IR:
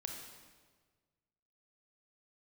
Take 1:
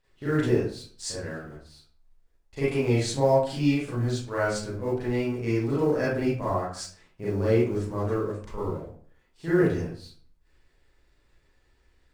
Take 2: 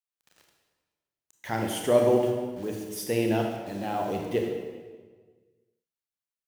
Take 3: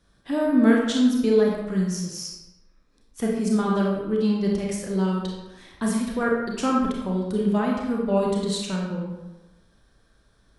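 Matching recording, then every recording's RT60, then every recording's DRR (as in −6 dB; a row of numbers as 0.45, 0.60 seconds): 2; 0.45, 1.5, 1.1 seconds; −10.0, 1.5, −2.0 decibels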